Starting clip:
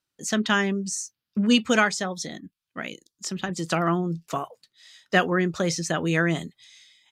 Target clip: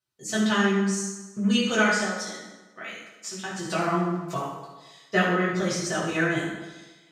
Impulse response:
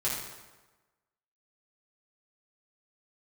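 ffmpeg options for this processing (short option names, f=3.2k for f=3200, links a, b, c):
-filter_complex "[0:a]asplit=3[a][b][c];[a]afade=t=out:st=2.03:d=0.02[d];[b]highpass=f=600:p=1,afade=t=in:st=2.03:d=0.02,afade=t=out:st=3.54:d=0.02[e];[c]afade=t=in:st=3.54:d=0.02[f];[d][e][f]amix=inputs=3:normalize=0[g];[1:a]atrim=start_sample=2205,asetrate=43659,aresample=44100[h];[g][h]afir=irnorm=-1:irlink=0,volume=-7.5dB"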